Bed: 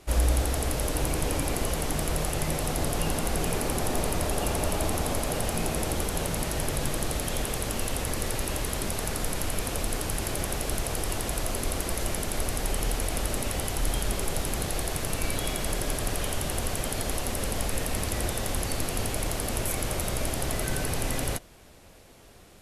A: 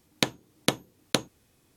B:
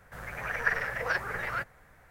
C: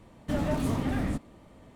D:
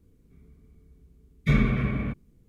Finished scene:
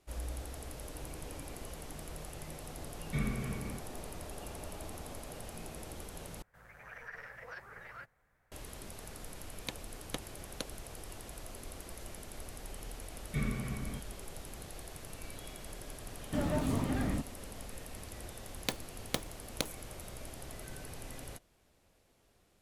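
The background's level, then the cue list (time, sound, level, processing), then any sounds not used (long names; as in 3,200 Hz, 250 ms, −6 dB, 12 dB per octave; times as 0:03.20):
bed −17 dB
0:01.66: mix in D −13 dB
0:06.42: overwrite with B −16 dB + brickwall limiter −19.5 dBFS
0:09.46: mix in A −14 dB + spectral dynamics exaggerated over time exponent 2
0:11.87: mix in D −13 dB
0:16.04: mix in C −4 dB
0:18.46: mix in A −11 dB + one scale factor per block 3 bits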